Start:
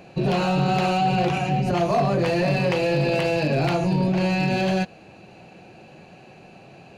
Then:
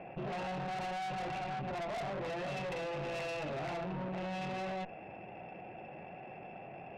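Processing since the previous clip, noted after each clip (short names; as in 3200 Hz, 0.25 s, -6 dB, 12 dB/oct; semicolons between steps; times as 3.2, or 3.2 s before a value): rippled Chebyshev low-pass 2800 Hz, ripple 9 dB; tube stage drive 32 dB, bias 0.65; fast leveller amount 50%; gain -5 dB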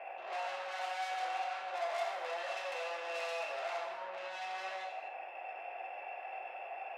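limiter -39 dBFS, peak gain reduction 7 dB; HPF 640 Hz 24 dB/oct; non-linear reverb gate 0.33 s falling, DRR -1.5 dB; gain +3 dB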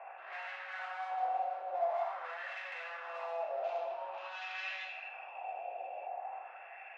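low shelf 500 Hz +3 dB; spectral gain 3.64–6.07, 2300–7300 Hz +10 dB; LFO band-pass sine 0.47 Hz 590–1900 Hz; gain +4 dB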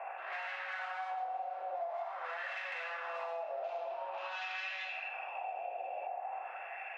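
compressor 6:1, threshold -43 dBFS, peak gain reduction 13.5 dB; gain +6 dB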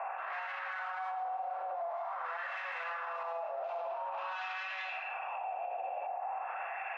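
bell 1100 Hz +11 dB 1.3 oct; limiter -31 dBFS, peak gain reduction 11.5 dB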